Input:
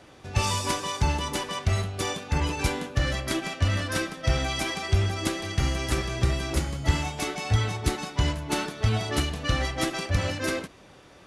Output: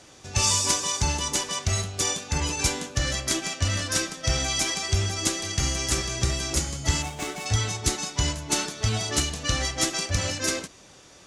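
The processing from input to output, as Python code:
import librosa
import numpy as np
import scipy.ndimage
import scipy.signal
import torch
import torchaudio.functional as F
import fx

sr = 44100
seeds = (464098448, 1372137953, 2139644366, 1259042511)

y = fx.median_filter(x, sr, points=9, at=(7.02, 7.46))
y = fx.peak_eq(y, sr, hz=6700.0, db=15.0, octaves=1.3)
y = y * librosa.db_to_amplitude(-2.0)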